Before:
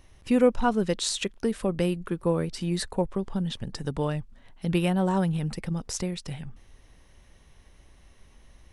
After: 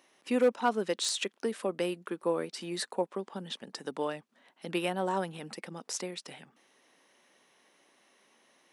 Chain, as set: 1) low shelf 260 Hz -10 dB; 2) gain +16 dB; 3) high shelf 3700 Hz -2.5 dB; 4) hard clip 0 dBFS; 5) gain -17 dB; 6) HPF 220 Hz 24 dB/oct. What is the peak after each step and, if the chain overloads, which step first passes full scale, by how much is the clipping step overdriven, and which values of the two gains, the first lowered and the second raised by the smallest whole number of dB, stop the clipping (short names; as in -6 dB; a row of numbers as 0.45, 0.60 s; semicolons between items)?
-10.0, +6.0, +4.5, 0.0, -17.0, -14.5 dBFS; step 2, 4.5 dB; step 2 +11 dB, step 5 -12 dB